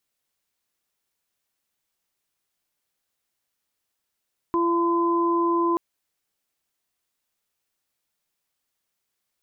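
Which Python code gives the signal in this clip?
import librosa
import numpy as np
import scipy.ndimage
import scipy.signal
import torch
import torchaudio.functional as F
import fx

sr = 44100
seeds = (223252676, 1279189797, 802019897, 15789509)

y = fx.additive_steady(sr, length_s=1.23, hz=340.0, level_db=-21.0, upper_db=(-19.5, -1.5))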